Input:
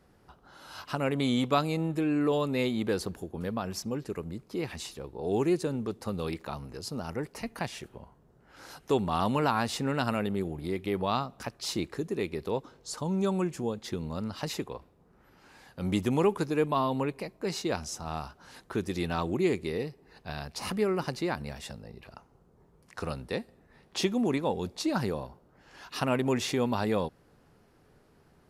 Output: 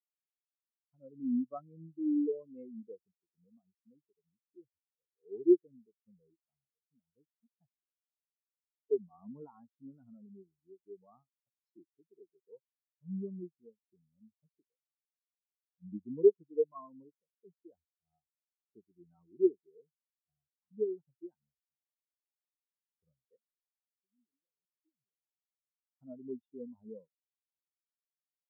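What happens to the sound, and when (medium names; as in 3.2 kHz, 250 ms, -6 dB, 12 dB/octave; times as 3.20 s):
23.36–25.98 s: compression, threshold -37 dBFS
whole clip: spectral contrast expander 4:1; trim -1 dB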